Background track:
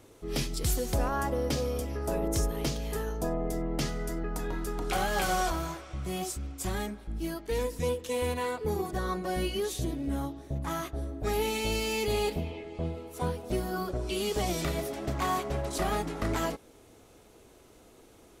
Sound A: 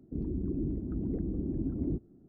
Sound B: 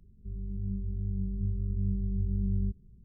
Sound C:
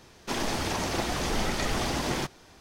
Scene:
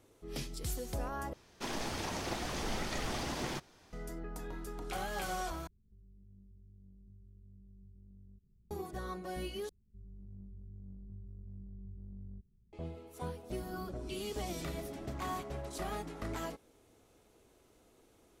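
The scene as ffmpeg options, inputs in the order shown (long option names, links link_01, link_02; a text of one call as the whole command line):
ffmpeg -i bed.wav -i cue0.wav -i cue1.wav -i cue2.wav -filter_complex "[2:a]asplit=2[link_01][link_02];[0:a]volume=-9.5dB[link_03];[link_01]acompressor=threshold=-48dB:ratio=3:attack=3.5:release=51:knee=6:detection=rms[link_04];[link_02]acompressor=threshold=-33dB:ratio=2:attack=0.82:release=57:knee=1:detection=peak[link_05];[link_03]asplit=4[link_06][link_07][link_08][link_09];[link_06]atrim=end=1.334[link_10];[3:a]atrim=end=2.6,asetpts=PTS-STARTPTS,volume=-8.5dB[link_11];[link_07]atrim=start=3.926:end=5.674[link_12];[link_04]atrim=end=3.04,asetpts=PTS-STARTPTS,volume=-12dB[link_13];[link_08]atrim=start=8.706:end=9.694[link_14];[link_05]atrim=end=3.04,asetpts=PTS-STARTPTS,volume=-14dB[link_15];[link_09]atrim=start=12.726[link_16];[1:a]atrim=end=2.28,asetpts=PTS-STARTPTS,volume=-16.5dB,afade=type=in:duration=0.004:curve=hsin,afade=type=out:start_time=2.276:duration=0.004:curve=hsin,adelay=13460[link_17];[link_10][link_11]acrossfade=duration=0.004:curve1=hsin:curve2=hsin[link_18];[link_18][link_12]acrossfade=duration=0.004:curve1=hsin:curve2=hsin[link_19];[link_19][link_13]acrossfade=duration=0.004:curve1=hsin:curve2=hsin[link_20];[link_20][link_14]acrossfade=duration=0.004:curve1=hsin:curve2=hsin[link_21];[link_21][link_15]acrossfade=duration=0.004:curve1=hsin:curve2=hsin[link_22];[link_22][link_16]acrossfade=duration=0.004:curve1=hsin:curve2=hsin[link_23];[link_23][link_17]amix=inputs=2:normalize=0" out.wav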